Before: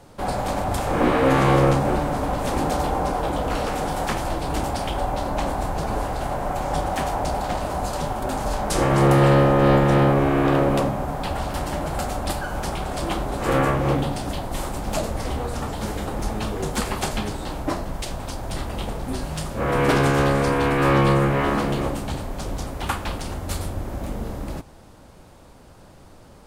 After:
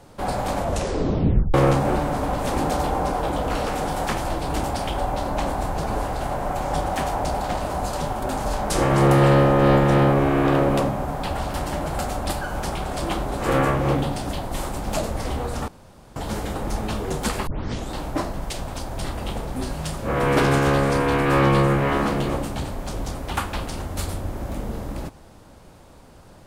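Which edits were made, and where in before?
0.57 s: tape stop 0.97 s
15.68 s: insert room tone 0.48 s
16.99 s: tape start 0.43 s

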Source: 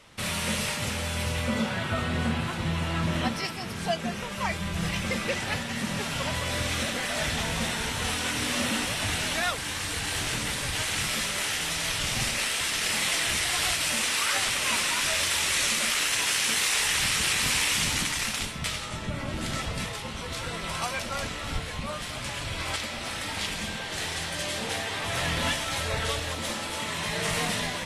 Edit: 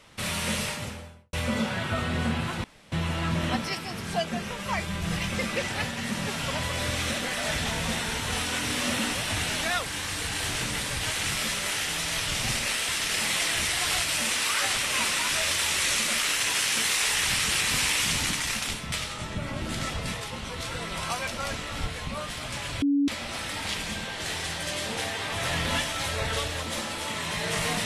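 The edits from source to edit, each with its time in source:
0.56–1.33 s: studio fade out
2.64 s: insert room tone 0.28 s
22.54–22.80 s: bleep 283 Hz -19.5 dBFS

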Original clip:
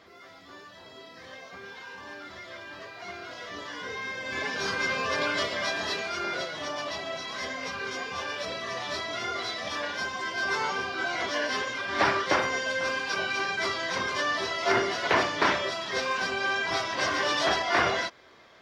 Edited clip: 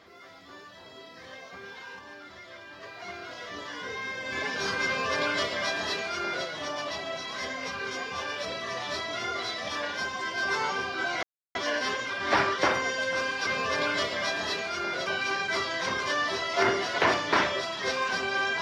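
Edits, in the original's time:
1.99–2.83 s: gain -3.5 dB
4.87–6.46 s: copy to 13.15 s
11.23 s: insert silence 0.32 s

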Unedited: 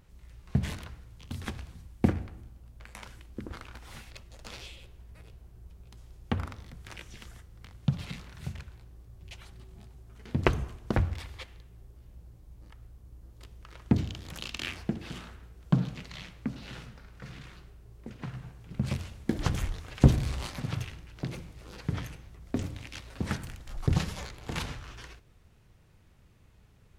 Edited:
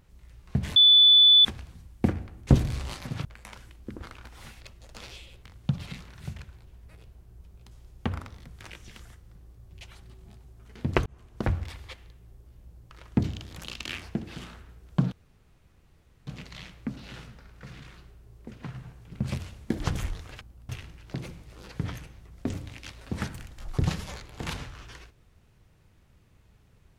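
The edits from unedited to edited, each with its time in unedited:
0.76–1.45 s: bleep 3.48 kHz -12.5 dBFS
2.47–2.75 s: swap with 20.00–20.78 s
7.62–8.86 s: move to 4.93 s
10.56–11.00 s: fade in
12.40–13.64 s: delete
15.86 s: insert room tone 1.15 s

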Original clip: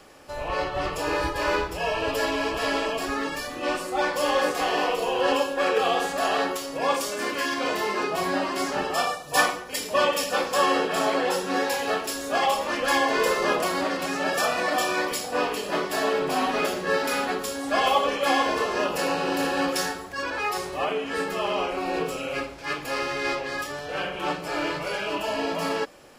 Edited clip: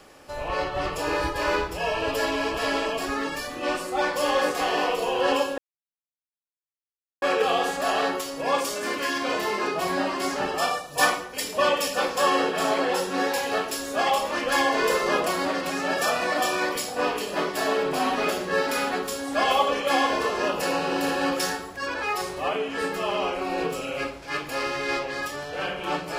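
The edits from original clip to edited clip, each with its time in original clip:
5.58 s: insert silence 1.64 s

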